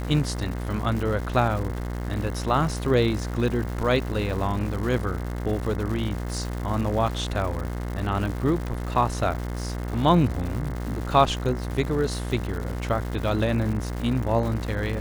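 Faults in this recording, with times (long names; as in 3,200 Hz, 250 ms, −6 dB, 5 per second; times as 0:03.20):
mains buzz 60 Hz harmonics 36 −30 dBFS
surface crackle 280 per second −32 dBFS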